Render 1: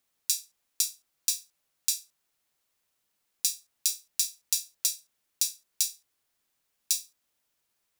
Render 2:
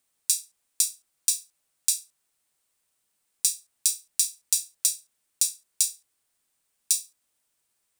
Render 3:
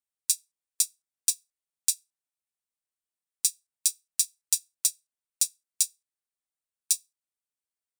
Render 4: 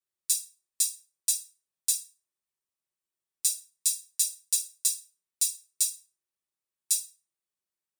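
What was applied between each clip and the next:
peaking EQ 8.7 kHz +9 dB 0.43 oct
upward expansion 2.5:1, over -32 dBFS
reverberation RT60 0.35 s, pre-delay 3 ms, DRR -7 dB; trim -7.5 dB

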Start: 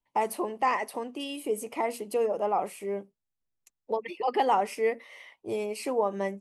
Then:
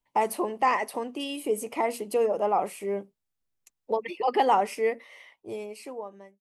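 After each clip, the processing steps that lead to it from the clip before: fade out at the end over 1.89 s; trim +2.5 dB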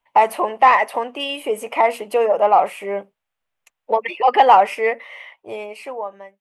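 high-order bell 1.3 kHz +12.5 dB 3 oct; in parallel at -7.5 dB: saturation -9.5 dBFS, distortion -12 dB; on the sum: trim -3 dB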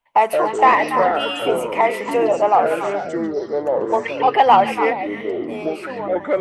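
ever faster or slower copies 106 ms, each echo -6 st, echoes 3, each echo -6 dB; repeats whose band climbs or falls 142 ms, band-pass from 3.6 kHz, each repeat -1.4 oct, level -3 dB; trim -1 dB

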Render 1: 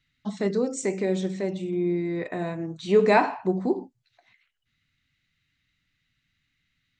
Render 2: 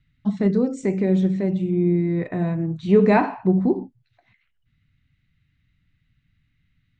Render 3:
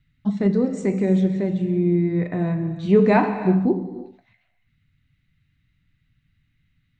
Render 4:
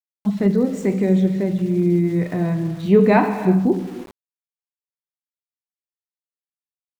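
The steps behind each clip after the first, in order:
tone controls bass +14 dB, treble -11 dB
gated-style reverb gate 390 ms flat, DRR 10 dB
small samples zeroed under -39.5 dBFS; trim +2 dB

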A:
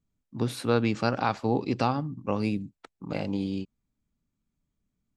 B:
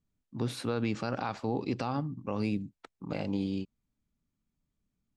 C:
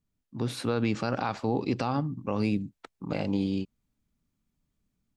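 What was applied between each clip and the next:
Bessel low-pass 9.7 kHz; peak limiter -18.5 dBFS, peak gain reduction 8.5 dB; trim -2 dB
level rider gain up to 4 dB

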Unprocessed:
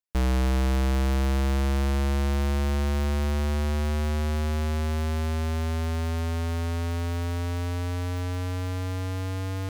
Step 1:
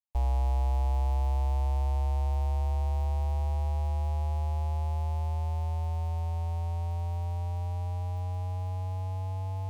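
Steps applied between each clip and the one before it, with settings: FFT filter 100 Hz 0 dB, 160 Hz -29 dB, 440 Hz -12 dB, 860 Hz +5 dB, 1.4 kHz -23 dB, 2.5 kHz -12 dB, 4 kHz -14 dB, 8.3 kHz -12 dB; trim -2.5 dB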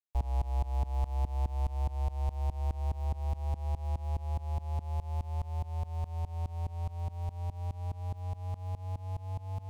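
tremolo saw up 4.8 Hz, depth 95%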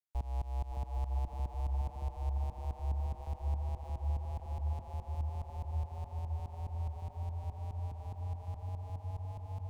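feedback echo behind a low-pass 563 ms, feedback 71%, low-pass 1.4 kHz, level -6 dB; trim -5.5 dB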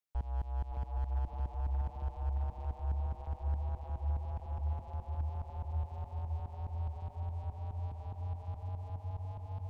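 slew-rate limiter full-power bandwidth 6.6 Hz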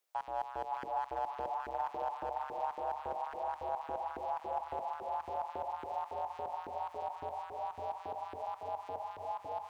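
hum notches 50/100/150/200/250/300/350/400/450 Hz; LFO high-pass saw up 3.6 Hz 350–1600 Hz; trim +9 dB

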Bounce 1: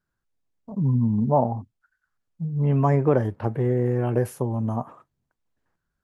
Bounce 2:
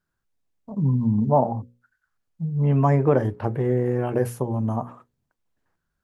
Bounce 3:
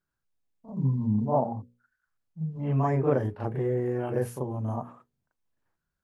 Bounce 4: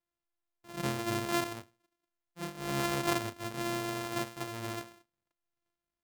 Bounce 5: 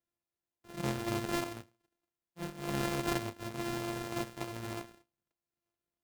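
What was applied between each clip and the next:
hum notches 60/120/180/240/300/360/420/480/540 Hz; trim +1.5 dB
reverse echo 38 ms -6 dB; trim -6.5 dB
sorted samples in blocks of 128 samples; bass shelf 320 Hz -7.5 dB; trim -4.5 dB
high-pass 61 Hz; in parallel at -4 dB: decimation with a swept rate 32×, swing 60% 3.3 Hz; on the sum: trim -4.5 dB

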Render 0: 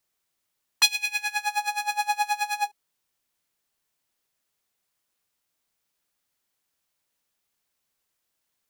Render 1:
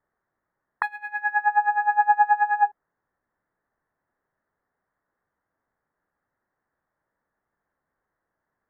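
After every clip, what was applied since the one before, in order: elliptic low-pass 1.8 kHz, stop band 40 dB; trim +8 dB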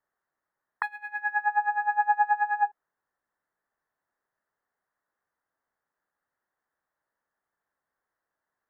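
bass shelf 390 Hz -10.5 dB; trim -3 dB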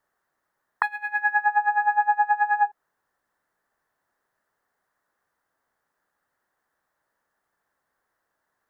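compression, threshold -25 dBFS, peak gain reduction 7.5 dB; trim +8 dB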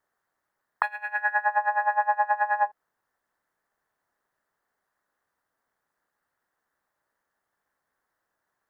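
AM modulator 220 Hz, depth 45%

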